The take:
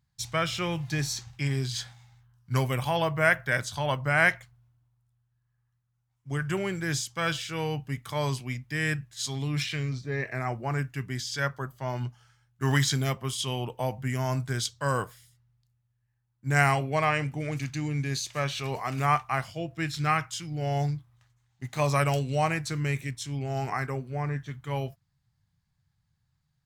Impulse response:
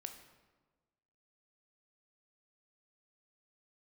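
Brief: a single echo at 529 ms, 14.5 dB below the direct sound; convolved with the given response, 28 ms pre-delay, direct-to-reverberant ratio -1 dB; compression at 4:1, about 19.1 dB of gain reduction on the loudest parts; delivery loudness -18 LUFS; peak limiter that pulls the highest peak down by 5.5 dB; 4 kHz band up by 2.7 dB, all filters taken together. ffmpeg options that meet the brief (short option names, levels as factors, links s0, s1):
-filter_complex "[0:a]equalizer=f=4000:t=o:g=3.5,acompressor=threshold=0.00891:ratio=4,alimiter=level_in=2.24:limit=0.0631:level=0:latency=1,volume=0.447,aecho=1:1:529:0.188,asplit=2[s0][s1];[1:a]atrim=start_sample=2205,adelay=28[s2];[s1][s2]afir=irnorm=-1:irlink=0,volume=1.78[s3];[s0][s3]amix=inputs=2:normalize=0,volume=10.6"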